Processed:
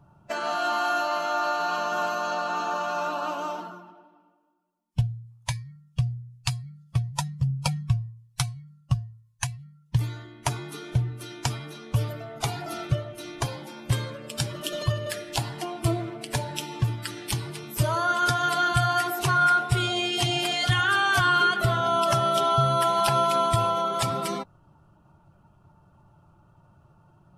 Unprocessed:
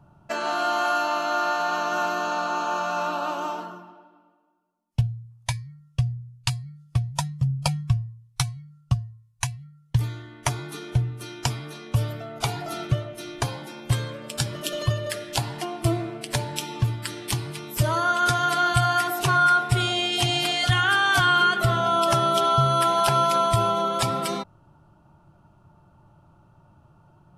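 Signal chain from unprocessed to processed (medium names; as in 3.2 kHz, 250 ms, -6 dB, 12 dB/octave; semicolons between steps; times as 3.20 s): coarse spectral quantiser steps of 15 dB; trim -1.5 dB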